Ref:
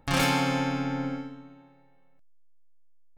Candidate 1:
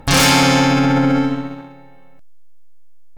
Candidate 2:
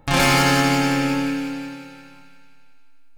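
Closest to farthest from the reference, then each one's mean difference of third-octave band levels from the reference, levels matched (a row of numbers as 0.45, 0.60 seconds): 1, 2; 4.0, 7.5 decibels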